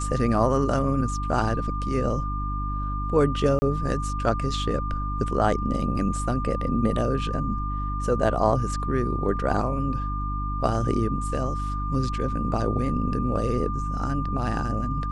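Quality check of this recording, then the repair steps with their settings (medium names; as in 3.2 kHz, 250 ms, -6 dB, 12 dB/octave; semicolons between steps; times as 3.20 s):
hum 50 Hz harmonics 6 -29 dBFS
whine 1.2 kHz -31 dBFS
3.59–3.62 s: dropout 30 ms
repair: band-stop 1.2 kHz, Q 30; de-hum 50 Hz, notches 6; interpolate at 3.59 s, 30 ms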